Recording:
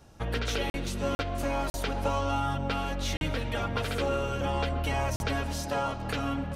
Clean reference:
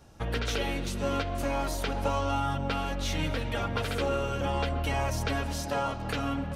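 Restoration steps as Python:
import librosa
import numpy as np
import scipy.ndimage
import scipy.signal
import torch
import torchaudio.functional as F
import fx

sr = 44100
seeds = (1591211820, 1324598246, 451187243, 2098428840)

y = fx.fix_interpolate(x, sr, at_s=(0.7, 1.15, 1.7, 3.17, 5.16), length_ms=41.0)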